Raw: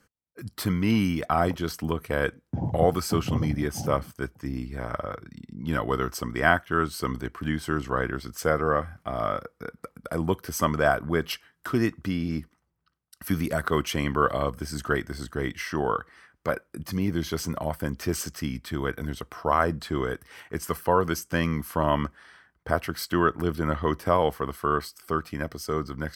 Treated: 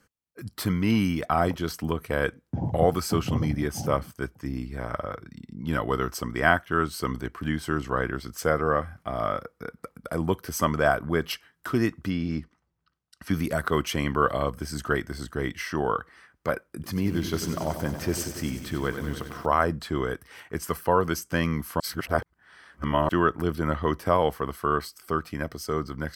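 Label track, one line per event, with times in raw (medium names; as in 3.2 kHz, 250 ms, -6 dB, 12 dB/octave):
12.100000	13.340000	low-pass 6.6 kHz
16.710000	19.460000	bit-crushed delay 94 ms, feedback 80%, word length 8-bit, level -10 dB
21.800000	23.090000	reverse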